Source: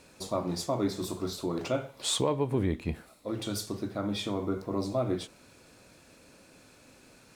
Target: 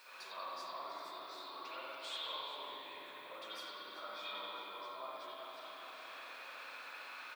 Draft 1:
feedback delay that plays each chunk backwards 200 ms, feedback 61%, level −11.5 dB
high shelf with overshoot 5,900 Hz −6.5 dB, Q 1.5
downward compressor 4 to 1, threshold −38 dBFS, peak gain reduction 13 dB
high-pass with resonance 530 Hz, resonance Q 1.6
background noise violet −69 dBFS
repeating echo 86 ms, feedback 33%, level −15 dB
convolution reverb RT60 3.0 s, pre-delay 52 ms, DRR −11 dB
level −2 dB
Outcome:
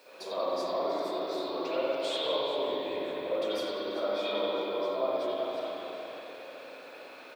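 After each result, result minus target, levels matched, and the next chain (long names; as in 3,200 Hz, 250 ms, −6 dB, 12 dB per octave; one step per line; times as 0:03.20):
downward compressor: peak gain reduction −8.5 dB; 500 Hz band +8.0 dB
feedback delay that plays each chunk backwards 200 ms, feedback 61%, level −11.5 dB
high shelf with overshoot 5,900 Hz −6.5 dB, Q 1.5
downward compressor 4 to 1, threshold −49.5 dBFS, peak gain reduction 21.5 dB
high-pass with resonance 530 Hz, resonance Q 1.6
background noise violet −69 dBFS
repeating echo 86 ms, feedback 33%, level −15 dB
convolution reverb RT60 3.0 s, pre-delay 52 ms, DRR −11 dB
level −2 dB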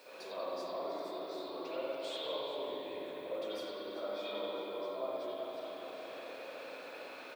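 500 Hz band +8.5 dB
feedback delay that plays each chunk backwards 200 ms, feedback 61%, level −11.5 dB
high shelf with overshoot 5,900 Hz −6.5 dB, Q 1.5
downward compressor 4 to 1, threshold −49.5 dBFS, peak gain reduction 21.5 dB
high-pass with resonance 1,100 Hz, resonance Q 1.6
background noise violet −69 dBFS
repeating echo 86 ms, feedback 33%, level −15 dB
convolution reverb RT60 3.0 s, pre-delay 52 ms, DRR −11 dB
level −2 dB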